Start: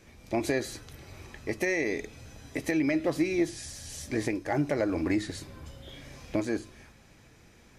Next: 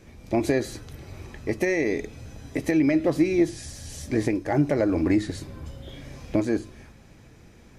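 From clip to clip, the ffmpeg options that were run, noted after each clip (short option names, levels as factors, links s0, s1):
-af "tiltshelf=f=680:g=3.5,volume=1.58"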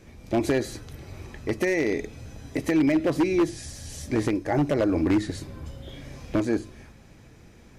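-af "aeval=exprs='0.178*(abs(mod(val(0)/0.178+3,4)-2)-1)':c=same"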